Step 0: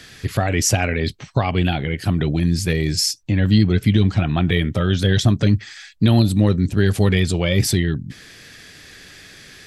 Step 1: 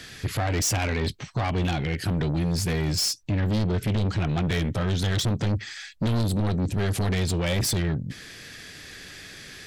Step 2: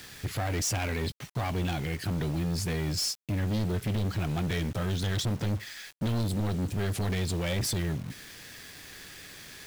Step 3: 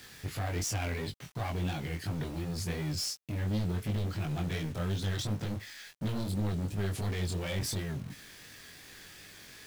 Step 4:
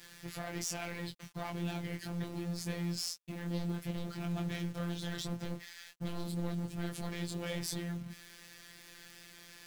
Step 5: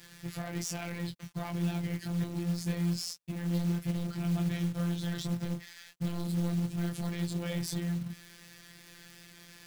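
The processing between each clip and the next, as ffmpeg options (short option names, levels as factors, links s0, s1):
-af "asoftclip=type=tanh:threshold=0.0891"
-af "acrusher=bits=6:mix=0:aa=0.000001,volume=0.562"
-af "flanger=delay=19:depth=4.5:speed=2.8,volume=0.841"
-af "afftfilt=real='hypot(re,im)*cos(PI*b)':imag='0':win_size=1024:overlap=0.75"
-af "equalizer=f=150:t=o:w=1.5:g=7,acrusher=bits=5:mode=log:mix=0:aa=0.000001"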